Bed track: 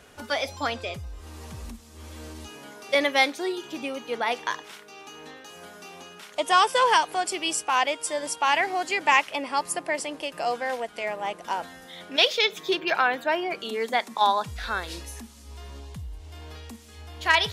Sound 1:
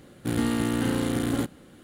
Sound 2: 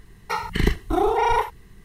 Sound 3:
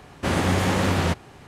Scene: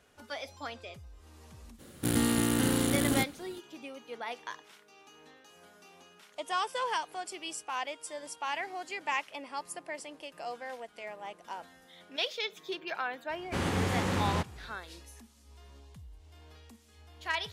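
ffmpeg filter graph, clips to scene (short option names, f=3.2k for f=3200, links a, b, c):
-filter_complex "[0:a]volume=-12.5dB[a];[1:a]highshelf=f=4.4k:g=10.5[b];[3:a]bandreject=f=630:w=9.1[c];[b]atrim=end=1.83,asetpts=PTS-STARTPTS,volume=-2.5dB,afade=t=in:d=0.02,afade=t=out:st=1.81:d=0.02,adelay=1780[d];[c]atrim=end=1.47,asetpts=PTS-STARTPTS,volume=-8.5dB,afade=t=in:d=0.004:c=hsin,afade=t=out:st=1.466:d=0.004:c=hsin,adelay=13290[e];[a][d][e]amix=inputs=3:normalize=0"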